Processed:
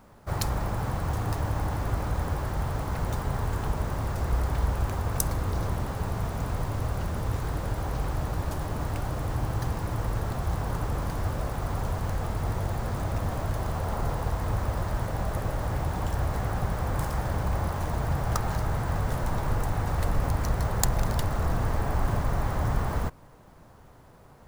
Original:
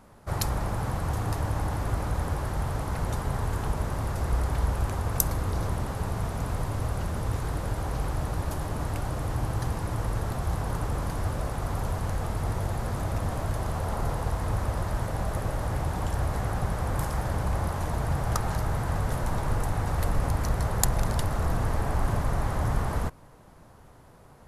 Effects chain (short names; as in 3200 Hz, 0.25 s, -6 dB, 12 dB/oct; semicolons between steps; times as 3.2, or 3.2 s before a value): careless resampling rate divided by 2×, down filtered, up hold